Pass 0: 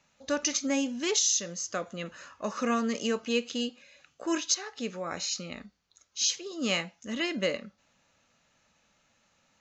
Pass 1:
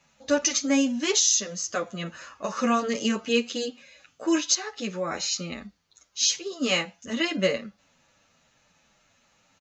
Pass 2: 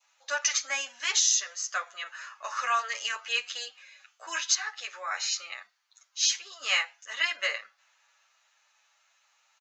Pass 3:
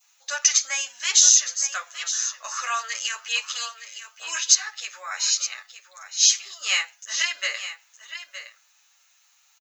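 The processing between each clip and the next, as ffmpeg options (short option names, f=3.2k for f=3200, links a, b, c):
-filter_complex "[0:a]asplit=2[a][b];[b]adelay=8.6,afreqshift=-2.4[c];[a][c]amix=inputs=2:normalize=1,volume=7.5dB"
-af "highpass=f=810:w=0.5412,highpass=f=810:w=1.3066,adynamicequalizer=threshold=0.00562:dfrequency=1700:dqfactor=1.4:tfrequency=1700:tqfactor=1.4:attack=5:release=100:ratio=0.375:range=3.5:mode=boostabove:tftype=bell,volume=-2.5dB"
-af "aemphasis=mode=production:type=riaa,aecho=1:1:915:0.266,volume=-1dB"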